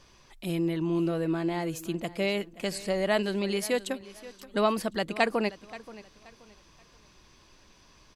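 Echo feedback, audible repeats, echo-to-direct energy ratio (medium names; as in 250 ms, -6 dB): 30%, 2, -17.5 dB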